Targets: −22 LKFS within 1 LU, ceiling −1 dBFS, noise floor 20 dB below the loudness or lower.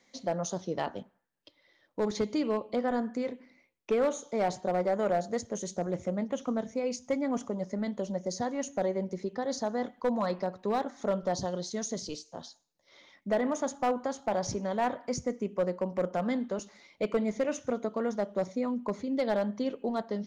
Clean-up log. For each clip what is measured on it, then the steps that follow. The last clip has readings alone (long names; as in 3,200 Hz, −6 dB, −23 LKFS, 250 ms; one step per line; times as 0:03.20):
share of clipped samples 0.5%; peaks flattened at −21.0 dBFS; integrated loudness −32.0 LKFS; sample peak −21.0 dBFS; target loudness −22.0 LKFS
→ clipped peaks rebuilt −21 dBFS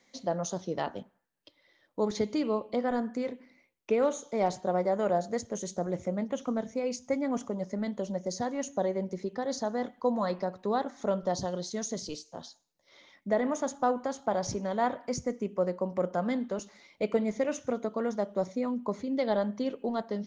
share of clipped samples 0.0%; integrated loudness −32.0 LKFS; sample peak −14.0 dBFS; target loudness −22.0 LKFS
→ level +10 dB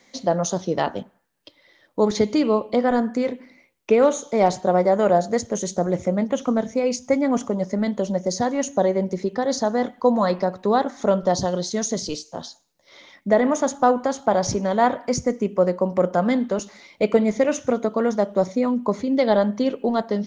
integrated loudness −22.0 LKFS; sample peak −4.0 dBFS; background noise floor −63 dBFS